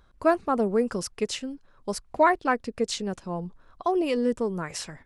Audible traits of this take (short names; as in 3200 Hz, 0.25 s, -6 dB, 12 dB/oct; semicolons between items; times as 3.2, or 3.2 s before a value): noise floor -59 dBFS; spectral tilt -4.5 dB/oct